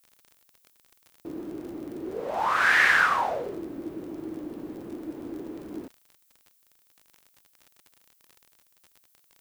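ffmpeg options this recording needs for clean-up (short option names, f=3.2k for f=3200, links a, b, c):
-af "adeclick=t=4,agate=range=-21dB:threshold=-57dB"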